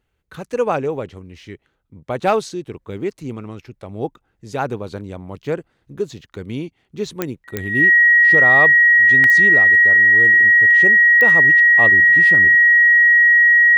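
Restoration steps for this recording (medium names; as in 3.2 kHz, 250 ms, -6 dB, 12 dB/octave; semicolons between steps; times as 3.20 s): de-click; band-stop 1.9 kHz, Q 30; interpolate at 7.34/9.24 s, 1.4 ms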